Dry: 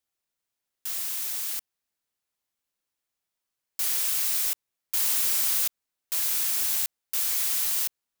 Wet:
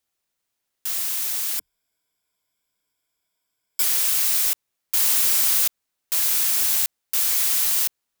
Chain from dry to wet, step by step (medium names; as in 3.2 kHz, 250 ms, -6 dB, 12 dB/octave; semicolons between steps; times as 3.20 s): 1.58–3.83 s: rippled EQ curve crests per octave 1.7, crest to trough 12 dB; trim +5.5 dB